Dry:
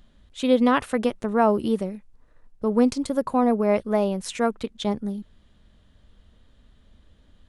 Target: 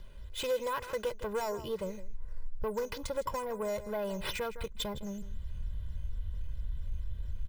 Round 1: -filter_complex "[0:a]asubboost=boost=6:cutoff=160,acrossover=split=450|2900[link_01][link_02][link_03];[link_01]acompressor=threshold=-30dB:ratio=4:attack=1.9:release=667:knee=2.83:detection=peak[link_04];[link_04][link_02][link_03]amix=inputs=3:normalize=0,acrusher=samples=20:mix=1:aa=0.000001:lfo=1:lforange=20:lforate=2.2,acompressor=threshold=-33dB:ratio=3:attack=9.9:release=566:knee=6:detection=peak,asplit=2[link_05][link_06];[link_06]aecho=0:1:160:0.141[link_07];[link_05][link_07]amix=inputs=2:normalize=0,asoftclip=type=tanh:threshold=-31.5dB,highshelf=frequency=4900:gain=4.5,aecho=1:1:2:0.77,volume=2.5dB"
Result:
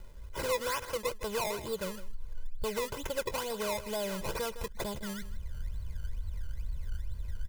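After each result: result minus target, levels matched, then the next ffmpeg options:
sample-and-hold swept by an LFO: distortion +13 dB; 8,000 Hz band +5.5 dB
-filter_complex "[0:a]asubboost=boost=6:cutoff=160,acrossover=split=450|2900[link_01][link_02][link_03];[link_01]acompressor=threshold=-30dB:ratio=4:attack=1.9:release=667:knee=2.83:detection=peak[link_04];[link_04][link_02][link_03]amix=inputs=3:normalize=0,acrusher=samples=5:mix=1:aa=0.000001:lfo=1:lforange=5:lforate=2.2,acompressor=threshold=-33dB:ratio=3:attack=9.9:release=566:knee=6:detection=peak,asplit=2[link_05][link_06];[link_06]aecho=0:1:160:0.141[link_07];[link_05][link_07]amix=inputs=2:normalize=0,asoftclip=type=tanh:threshold=-31.5dB,highshelf=frequency=4900:gain=4.5,aecho=1:1:2:0.77,volume=2.5dB"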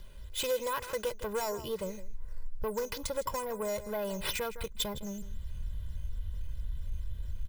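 8,000 Hz band +5.5 dB
-filter_complex "[0:a]asubboost=boost=6:cutoff=160,acrossover=split=450|2900[link_01][link_02][link_03];[link_01]acompressor=threshold=-30dB:ratio=4:attack=1.9:release=667:knee=2.83:detection=peak[link_04];[link_04][link_02][link_03]amix=inputs=3:normalize=0,acrusher=samples=5:mix=1:aa=0.000001:lfo=1:lforange=5:lforate=2.2,acompressor=threshold=-33dB:ratio=3:attack=9.9:release=566:knee=6:detection=peak,asplit=2[link_05][link_06];[link_06]aecho=0:1:160:0.141[link_07];[link_05][link_07]amix=inputs=2:normalize=0,asoftclip=type=tanh:threshold=-31.5dB,highshelf=frequency=4900:gain=-4.5,aecho=1:1:2:0.77,volume=2.5dB"

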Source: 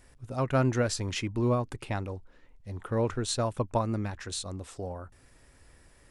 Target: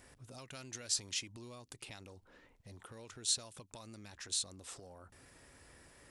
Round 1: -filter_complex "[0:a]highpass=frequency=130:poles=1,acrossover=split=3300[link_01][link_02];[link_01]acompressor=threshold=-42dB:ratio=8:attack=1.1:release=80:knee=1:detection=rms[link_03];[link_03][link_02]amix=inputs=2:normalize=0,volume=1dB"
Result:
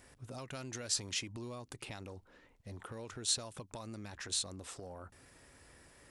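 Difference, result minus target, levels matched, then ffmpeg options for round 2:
downward compressor: peak gain reduction −6.5 dB
-filter_complex "[0:a]highpass=frequency=130:poles=1,acrossover=split=3300[link_01][link_02];[link_01]acompressor=threshold=-49.5dB:ratio=8:attack=1.1:release=80:knee=1:detection=rms[link_03];[link_03][link_02]amix=inputs=2:normalize=0,volume=1dB"

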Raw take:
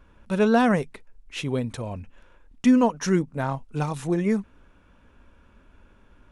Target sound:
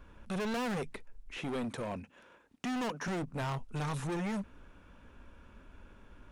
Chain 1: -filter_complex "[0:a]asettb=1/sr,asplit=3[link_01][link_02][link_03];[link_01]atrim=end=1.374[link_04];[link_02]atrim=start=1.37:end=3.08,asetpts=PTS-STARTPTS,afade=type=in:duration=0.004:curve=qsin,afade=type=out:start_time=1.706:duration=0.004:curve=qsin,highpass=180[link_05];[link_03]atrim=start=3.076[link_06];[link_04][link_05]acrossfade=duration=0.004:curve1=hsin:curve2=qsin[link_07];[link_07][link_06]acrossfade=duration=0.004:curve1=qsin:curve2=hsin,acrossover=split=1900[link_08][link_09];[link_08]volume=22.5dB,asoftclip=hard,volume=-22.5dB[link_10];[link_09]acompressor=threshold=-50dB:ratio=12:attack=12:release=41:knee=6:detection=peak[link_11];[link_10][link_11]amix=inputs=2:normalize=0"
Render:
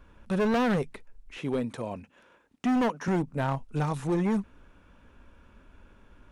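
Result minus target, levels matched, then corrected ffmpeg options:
gain into a clipping stage and back: distortion −5 dB
-filter_complex "[0:a]asettb=1/sr,asplit=3[link_01][link_02][link_03];[link_01]atrim=end=1.374[link_04];[link_02]atrim=start=1.37:end=3.08,asetpts=PTS-STARTPTS,afade=type=in:duration=0.004:curve=qsin,afade=type=out:start_time=1.706:duration=0.004:curve=qsin,highpass=180[link_05];[link_03]atrim=start=3.076[link_06];[link_04][link_05]acrossfade=duration=0.004:curve1=hsin:curve2=qsin[link_07];[link_07][link_06]acrossfade=duration=0.004:curve1=qsin:curve2=hsin,acrossover=split=1900[link_08][link_09];[link_08]volume=33.5dB,asoftclip=hard,volume=-33.5dB[link_10];[link_09]acompressor=threshold=-50dB:ratio=12:attack=12:release=41:knee=6:detection=peak[link_11];[link_10][link_11]amix=inputs=2:normalize=0"

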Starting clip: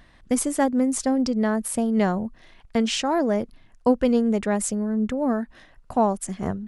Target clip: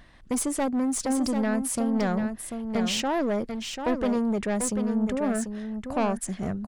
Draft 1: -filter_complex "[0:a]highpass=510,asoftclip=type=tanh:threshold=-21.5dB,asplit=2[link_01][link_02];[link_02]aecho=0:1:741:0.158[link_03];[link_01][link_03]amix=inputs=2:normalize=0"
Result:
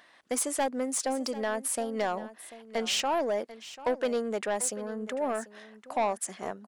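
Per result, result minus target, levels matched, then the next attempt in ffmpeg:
echo-to-direct −9 dB; 500 Hz band +3.0 dB
-filter_complex "[0:a]highpass=510,asoftclip=type=tanh:threshold=-21.5dB,asplit=2[link_01][link_02];[link_02]aecho=0:1:741:0.447[link_03];[link_01][link_03]amix=inputs=2:normalize=0"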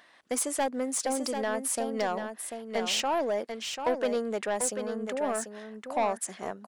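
500 Hz band +3.0 dB
-filter_complex "[0:a]asoftclip=type=tanh:threshold=-21.5dB,asplit=2[link_01][link_02];[link_02]aecho=0:1:741:0.447[link_03];[link_01][link_03]amix=inputs=2:normalize=0"

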